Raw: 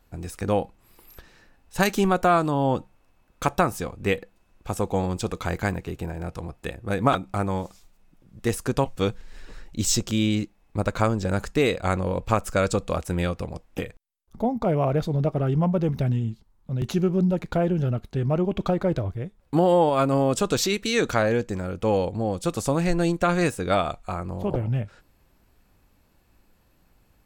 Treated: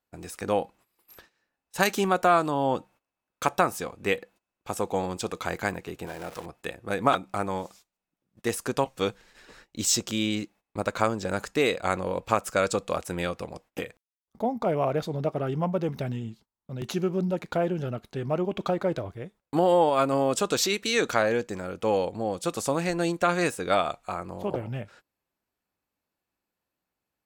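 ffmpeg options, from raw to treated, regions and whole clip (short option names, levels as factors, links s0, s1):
-filter_complex "[0:a]asettb=1/sr,asplit=3[s0][s1][s2];[s0]atrim=end=6.064[s3];[s1]atrim=start=6.06:end=6.46,asetpts=PTS-STARTPTS,afade=t=in:d=0.004:c=qsin,afade=t=out:st=0.396:d=0.004:c=qsin,aeval=exprs='val(0)+0.5*0.015*sgn(val(0))':c=same,equalizer=f=85:t=o:w=2.2:g=-7[s4];[s2]atrim=start=6.456[s5];[s3][s4]acrossfade=d=0.004:c1=hsin:c2=qsin[s6];[s6][s5]acrossfade=d=0.004:c1=qsin:c2=hsin,highpass=f=360:p=1,agate=range=0.126:threshold=0.00251:ratio=16:detection=peak"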